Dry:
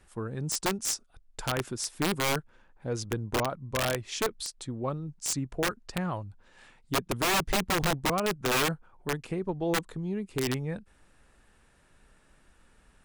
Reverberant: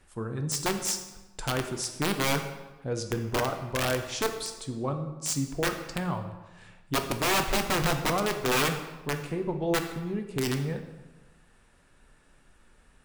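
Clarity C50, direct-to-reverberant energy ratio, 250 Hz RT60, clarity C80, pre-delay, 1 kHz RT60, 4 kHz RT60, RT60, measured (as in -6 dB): 8.0 dB, 5.0 dB, 1.3 s, 10.5 dB, 4 ms, 1.1 s, 0.80 s, 1.1 s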